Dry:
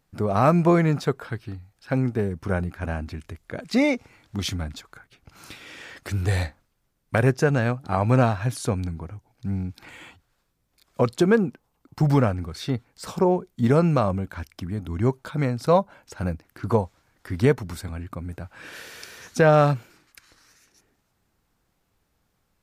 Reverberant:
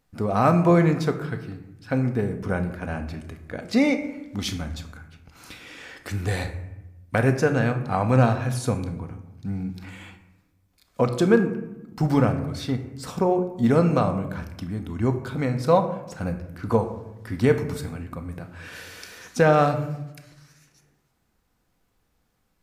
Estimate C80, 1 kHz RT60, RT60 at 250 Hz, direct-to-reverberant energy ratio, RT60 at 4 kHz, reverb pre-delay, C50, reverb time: 12.5 dB, 0.90 s, 1.4 s, 5.5 dB, 0.55 s, 4 ms, 10.5 dB, 0.95 s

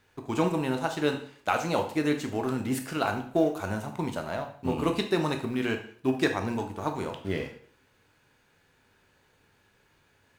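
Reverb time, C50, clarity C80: 0.55 s, 9.5 dB, 13.5 dB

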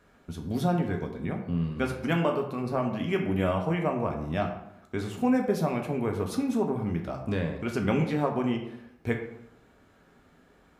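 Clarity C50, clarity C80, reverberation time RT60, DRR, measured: 7.0 dB, 9.5 dB, 0.80 s, 2.0 dB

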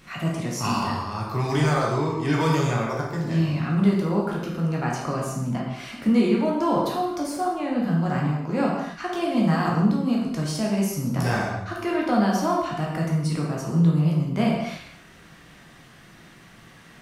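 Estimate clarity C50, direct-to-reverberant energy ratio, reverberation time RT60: 1.5 dB, -3.0 dB, no single decay rate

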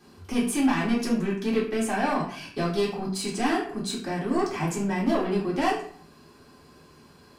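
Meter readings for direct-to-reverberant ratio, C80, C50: -6.5 dB, 10.0 dB, 6.0 dB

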